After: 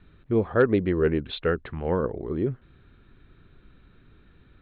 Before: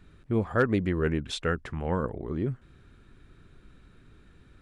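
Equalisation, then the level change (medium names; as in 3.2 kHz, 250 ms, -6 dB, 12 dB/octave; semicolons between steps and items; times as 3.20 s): steep low-pass 4.2 kHz 96 dB/octave; dynamic bell 420 Hz, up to +7 dB, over -40 dBFS, Q 1.4; 0.0 dB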